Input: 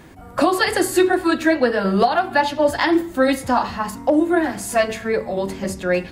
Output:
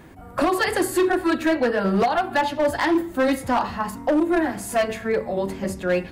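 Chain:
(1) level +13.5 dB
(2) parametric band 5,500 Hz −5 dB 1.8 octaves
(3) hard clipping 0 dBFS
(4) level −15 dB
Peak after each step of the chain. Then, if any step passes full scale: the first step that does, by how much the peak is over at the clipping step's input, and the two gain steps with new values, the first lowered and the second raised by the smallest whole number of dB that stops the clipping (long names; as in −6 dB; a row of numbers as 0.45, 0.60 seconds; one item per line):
+7.0, +7.0, 0.0, −15.0 dBFS
step 1, 7.0 dB
step 1 +6.5 dB, step 4 −8 dB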